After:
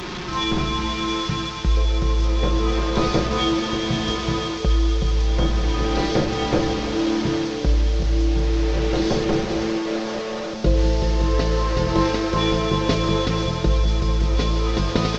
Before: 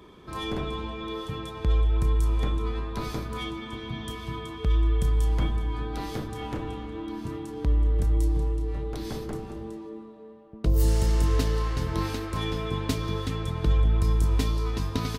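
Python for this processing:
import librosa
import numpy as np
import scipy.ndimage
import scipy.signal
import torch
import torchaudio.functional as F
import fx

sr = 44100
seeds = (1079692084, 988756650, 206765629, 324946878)

y = fx.delta_mod(x, sr, bps=32000, step_db=-34.0)
y = y + 0.49 * np.pad(y, (int(5.6 * sr / 1000.0), 0))[:len(y)]
y = fx.rider(y, sr, range_db=4, speed_s=0.5)
y = fx.peak_eq(y, sr, hz=520.0, db=fx.steps((0.0, -5.0), (1.77, 9.5)), octaves=0.84)
y = fx.echo_wet_highpass(y, sr, ms=492, feedback_pct=81, hz=4100.0, wet_db=-6.0)
y = y * librosa.db_to_amplitude(6.0)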